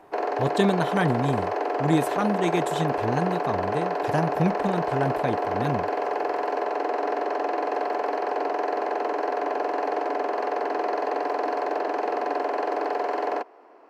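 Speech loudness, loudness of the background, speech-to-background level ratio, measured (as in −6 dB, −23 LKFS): −27.5 LKFS, −27.0 LKFS, −0.5 dB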